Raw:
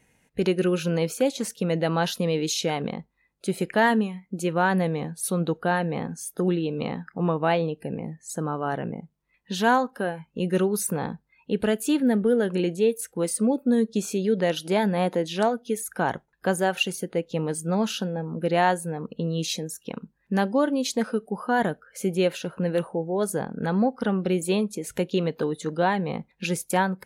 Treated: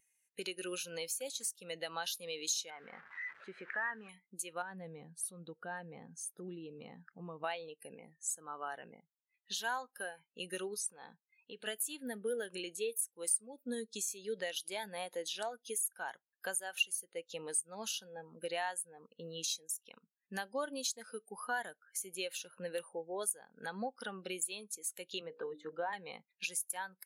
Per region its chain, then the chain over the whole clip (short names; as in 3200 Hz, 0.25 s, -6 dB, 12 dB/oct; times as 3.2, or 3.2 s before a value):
2.7–4.09 delta modulation 64 kbps, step -35.5 dBFS + synth low-pass 1600 Hz, resonance Q 2.6 + compressor 2:1, threshold -27 dBFS
4.62–7.44 RIAA curve playback + compressor 2:1, threshold -30 dBFS
10.74–11.66 LPF 5400 Hz + compressor 4:1, threshold -27 dBFS
18.82–19.44 LPF 2200 Hz 6 dB/oct + short-mantissa float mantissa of 8-bit
25.21–25.93 LPF 1700 Hz + notches 60/120/180/240/300/360/420/480/540/600 Hz + three-band squash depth 40%
whole clip: differentiator; compressor 3:1, threshold -46 dBFS; spectral expander 1.5:1; gain +9 dB